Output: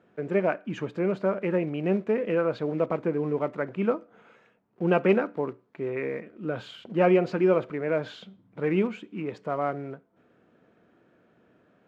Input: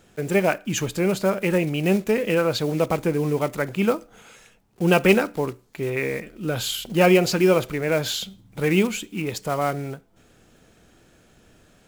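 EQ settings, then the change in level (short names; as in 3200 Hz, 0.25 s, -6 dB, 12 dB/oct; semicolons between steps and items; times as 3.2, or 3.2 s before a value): HPF 180 Hz 12 dB/oct; LPF 1600 Hz 12 dB/oct; notch 810 Hz, Q 12; -3.5 dB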